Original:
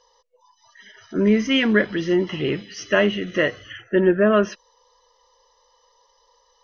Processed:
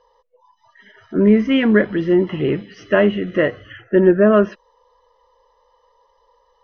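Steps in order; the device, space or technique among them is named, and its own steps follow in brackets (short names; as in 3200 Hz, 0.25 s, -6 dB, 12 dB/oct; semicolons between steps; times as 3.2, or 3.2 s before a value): phone in a pocket (LPF 3700 Hz 12 dB/oct; high shelf 2100 Hz -12 dB); gain +5 dB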